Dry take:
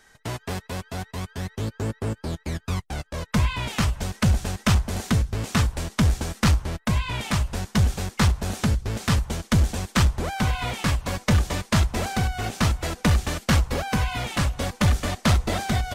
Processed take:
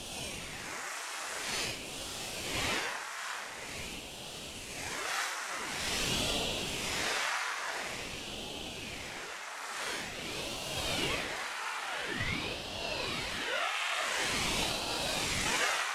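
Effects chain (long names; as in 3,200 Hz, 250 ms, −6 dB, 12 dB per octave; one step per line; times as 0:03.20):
reversed piece by piece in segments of 58 ms
convolution reverb RT60 0.55 s, pre-delay 99 ms, DRR −8.5 dB
downward compressor 4 to 1, threshold −16 dBFS, peak gain reduction 10 dB
hard clipping −20.5 dBFS, distortion −8 dB
high-pass filter 980 Hz 24 dB per octave
extreme stretch with random phases 9.7×, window 0.05 s, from 0:05.85
low-pass filter 12,000 Hz 24 dB per octave
feedback echo with a long and a short gap by turns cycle 1,068 ms, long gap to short 1.5 to 1, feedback 68%, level −11.5 dB
ring modulator whose carrier an LFO sweeps 960 Hz, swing 80%, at 0.47 Hz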